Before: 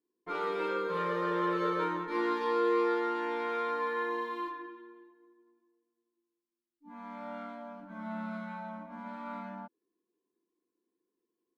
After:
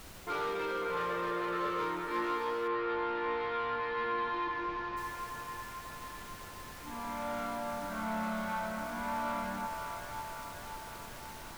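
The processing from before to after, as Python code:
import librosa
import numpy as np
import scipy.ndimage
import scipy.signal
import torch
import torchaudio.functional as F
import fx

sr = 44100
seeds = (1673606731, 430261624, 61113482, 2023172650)

y = fx.low_shelf(x, sr, hz=200.0, db=-8.5)
y = fx.dmg_noise_colour(y, sr, seeds[0], colour='pink', level_db=-55.0)
y = fx.rider(y, sr, range_db=5, speed_s=0.5)
y = fx.leveller(y, sr, passes=2)
y = fx.lowpass(y, sr, hz=4300.0, slope=24, at=(2.67, 4.96), fade=0.02)
y = fx.echo_wet_bandpass(y, sr, ms=546, feedback_pct=63, hz=1300.0, wet_db=-4.5)
y = y * 10.0 ** (-5.5 / 20.0)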